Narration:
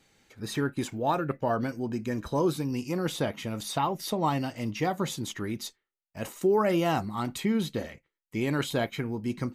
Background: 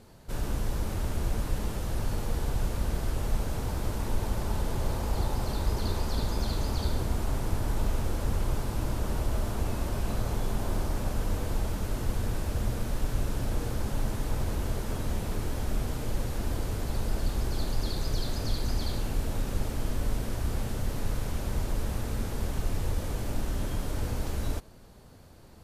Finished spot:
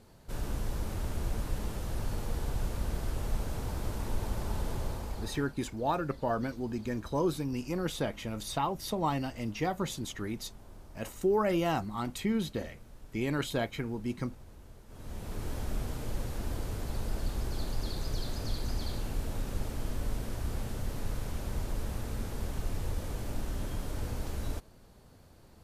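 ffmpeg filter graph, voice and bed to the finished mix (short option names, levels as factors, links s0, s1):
-filter_complex "[0:a]adelay=4800,volume=0.668[s0];[1:a]volume=4.47,afade=t=out:st=4.71:d=0.83:silence=0.133352,afade=t=in:st=14.88:d=0.63:silence=0.141254[s1];[s0][s1]amix=inputs=2:normalize=0"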